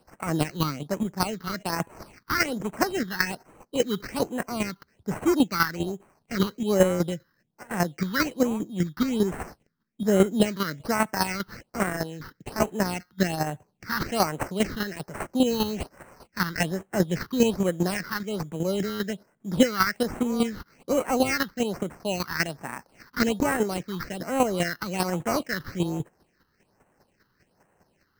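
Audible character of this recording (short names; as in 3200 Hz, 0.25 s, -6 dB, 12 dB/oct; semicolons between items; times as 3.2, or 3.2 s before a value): aliases and images of a low sample rate 3500 Hz, jitter 0%; phasing stages 6, 1.2 Hz, lowest notch 630–4700 Hz; chopped level 5 Hz, depth 60%, duty 15%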